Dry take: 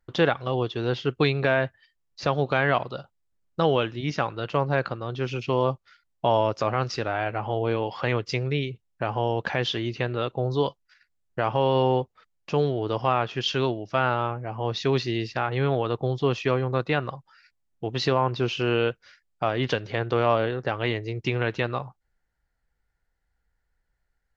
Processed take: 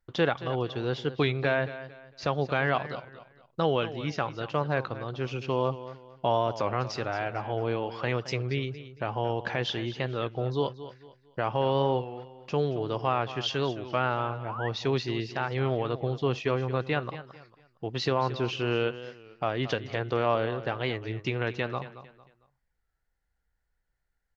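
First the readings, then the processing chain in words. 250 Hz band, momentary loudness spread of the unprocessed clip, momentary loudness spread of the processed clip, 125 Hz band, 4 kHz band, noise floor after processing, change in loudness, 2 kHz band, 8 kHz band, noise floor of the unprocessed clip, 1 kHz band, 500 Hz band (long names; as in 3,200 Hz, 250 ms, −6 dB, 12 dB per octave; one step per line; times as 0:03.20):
−4.0 dB, 7 LU, 10 LU, −4.0 dB, −4.0 dB, −77 dBFS, −4.0 dB, −4.0 dB, can't be measured, −76 dBFS, −3.5 dB, −4.0 dB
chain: repeating echo 226 ms, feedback 32%, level −14 dB
sound drawn into the spectrogram rise, 0:14.47–0:14.69, 840–2,000 Hz −33 dBFS
wow of a warped record 33 1/3 rpm, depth 100 cents
level −4 dB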